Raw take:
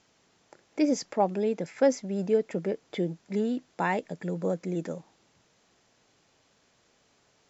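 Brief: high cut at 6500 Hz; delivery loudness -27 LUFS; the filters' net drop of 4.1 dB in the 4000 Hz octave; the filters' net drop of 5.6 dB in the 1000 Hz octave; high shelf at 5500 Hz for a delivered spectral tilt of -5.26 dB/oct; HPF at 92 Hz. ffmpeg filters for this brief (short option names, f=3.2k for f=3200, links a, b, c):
-af "highpass=92,lowpass=6.5k,equalizer=f=1k:t=o:g=-7.5,equalizer=f=4k:t=o:g=-7.5,highshelf=f=5.5k:g=6.5,volume=3.5dB"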